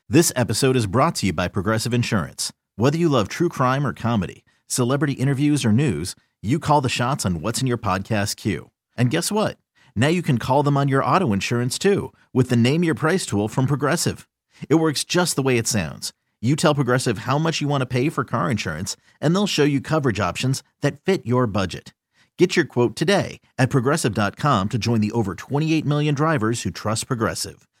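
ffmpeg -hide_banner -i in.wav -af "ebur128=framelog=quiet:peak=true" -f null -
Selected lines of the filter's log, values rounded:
Integrated loudness:
  I:         -21.1 LUFS
  Threshold: -31.4 LUFS
Loudness range:
  LRA:         2.0 LU
  Threshold: -41.4 LUFS
  LRA low:   -22.2 LUFS
  LRA high:  -20.3 LUFS
True peak:
  Peak:       -3.0 dBFS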